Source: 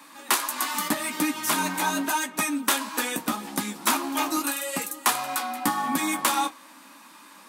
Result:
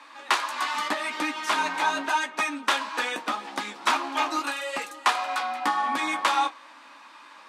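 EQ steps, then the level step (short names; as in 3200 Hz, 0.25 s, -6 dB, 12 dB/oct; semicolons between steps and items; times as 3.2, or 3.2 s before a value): BPF 490–4000 Hz; +2.5 dB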